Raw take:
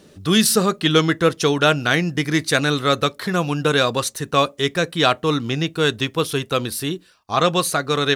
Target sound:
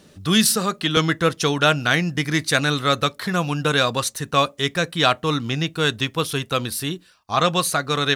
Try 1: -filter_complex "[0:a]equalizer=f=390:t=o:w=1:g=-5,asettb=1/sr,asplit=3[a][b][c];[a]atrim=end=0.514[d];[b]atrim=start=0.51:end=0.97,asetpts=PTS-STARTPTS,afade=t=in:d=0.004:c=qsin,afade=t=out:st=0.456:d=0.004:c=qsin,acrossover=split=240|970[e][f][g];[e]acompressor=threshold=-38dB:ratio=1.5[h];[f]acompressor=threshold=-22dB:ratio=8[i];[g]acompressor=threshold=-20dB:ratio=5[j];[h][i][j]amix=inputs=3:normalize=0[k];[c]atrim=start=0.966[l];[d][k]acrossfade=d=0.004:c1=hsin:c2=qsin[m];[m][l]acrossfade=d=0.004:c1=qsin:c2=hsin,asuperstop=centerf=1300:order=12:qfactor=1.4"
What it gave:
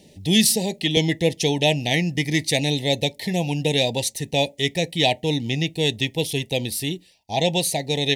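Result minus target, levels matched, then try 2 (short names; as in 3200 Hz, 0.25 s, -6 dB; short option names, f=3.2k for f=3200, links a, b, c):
1000 Hz band -6.5 dB
-filter_complex "[0:a]equalizer=f=390:t=o:w=1:g=-5,asettb=1/sr,asplit=3[a][b][c];[a]atrim=end=0.514[d];[b]atrim=start=0.51:end=0.97,asetpts=PTS-STARTPTS,afade=t=in:d=0.004:c=qsin,afade=t=out:st=0.456:d=0.004:c=qsin,acrossover=split=240|970[e][f][g];[e]acompressor=threshold=-38dB:ratio=1.5[h];[f]acompressor=threshold=-22dB:ratio=8[i];[g]acompressor=threshold=-20dB:ratio=5[j];[h][i][j]amix=inputs=3:normalize=0[k];[c]atrim=start=0.966[l];[d][k]acrossfade=d=0.004:c1=hsin:c2=qsin[m];[m][l]acrossfade=d=0.004:c1=qsin:c2=hsin"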